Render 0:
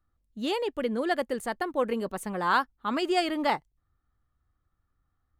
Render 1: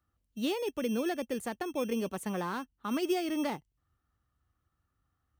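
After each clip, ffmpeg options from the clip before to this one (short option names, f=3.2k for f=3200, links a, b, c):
-filter_complex "[0:a]highpass=57,acrossover=split=400[a][b];[a]acrusher=samples=15:mix=1:aa=0.000001[c];[b]acompressor=threshold=-36dB:ratio=6[d];[c][d]amix=inputs=2:normalize=0"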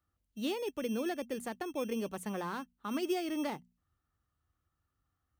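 -af "bandreject=f=60:t=h:w=6,bandreject=f=120:t=h:w=6,bandreject=f=180:t=h:w=6,bandreject=f=240:t=h:w=6,volume=-3dB"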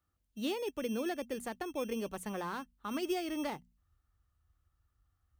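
-af "asubboost=boost=5:cutoff=84"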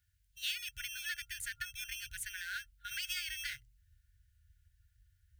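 -af "afftfilt=real='re*(1-between(b*sr/4096,130,1400))':imag='im*(1-between(b*sr/4096,130,1400))':win_size=4096:overlap=0.75,volume=6.5dB"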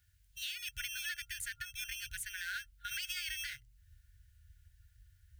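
-af "alimiter=level_in=11.5dB:limit=-24dB:level=0:latency=1:release=411,volume=-11.5dB,volume=6dB"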